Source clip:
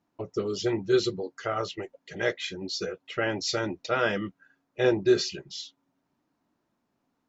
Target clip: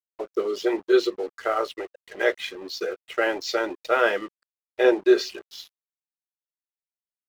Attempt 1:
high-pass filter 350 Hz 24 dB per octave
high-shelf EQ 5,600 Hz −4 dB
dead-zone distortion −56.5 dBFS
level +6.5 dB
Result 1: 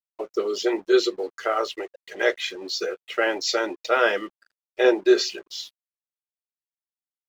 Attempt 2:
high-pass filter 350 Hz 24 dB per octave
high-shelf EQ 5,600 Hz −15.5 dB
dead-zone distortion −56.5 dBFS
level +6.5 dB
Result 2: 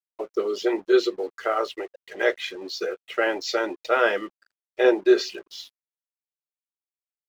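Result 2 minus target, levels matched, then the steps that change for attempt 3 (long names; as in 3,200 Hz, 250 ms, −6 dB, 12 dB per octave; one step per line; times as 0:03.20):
dead-zone distortion: distortion −6 dB
change: dead-zone distortion −50.5 dBFS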